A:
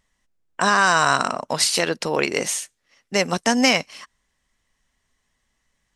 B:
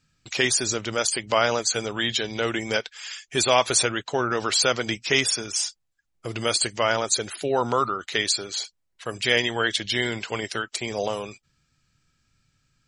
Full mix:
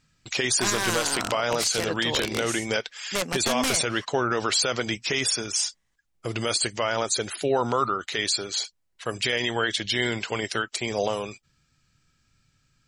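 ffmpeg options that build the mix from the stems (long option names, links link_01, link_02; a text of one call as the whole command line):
ffmpeg -i stem1.wav -i stem2.wav -filter_complex "[0:a]aeval=exprs='(mod(3.35*val(0)+1,2)-1)/3.35':channel_layout=same,lowpass=11000,volume=-6dB[link_01];[1:a]alimiter=limit=-13.5dB:level=0:latency=1:release=27,volume=1.5dB[link_02];[link_01][link_02]amix=inputs=2:normalize=0,alimiter=limit=-13dB:level=0:latency=1:release=152" out.wav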